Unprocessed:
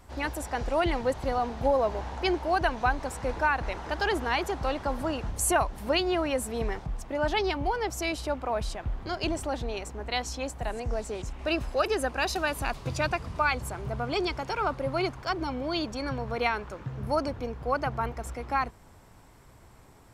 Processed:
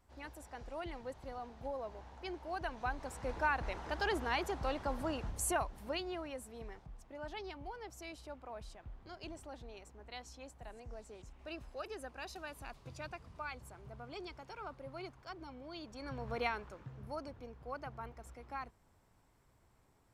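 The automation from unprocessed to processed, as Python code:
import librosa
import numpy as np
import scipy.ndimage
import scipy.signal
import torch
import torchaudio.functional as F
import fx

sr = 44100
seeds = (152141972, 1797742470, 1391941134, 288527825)

y = fx.gain(x, sr, db=fx.line((2.23, -17.5), (3.48, -7.5), (5.23, -7.5), (6.52, -18.0), (15.8, -18.0), (16.33, -7.5), (17.15, -16.0)))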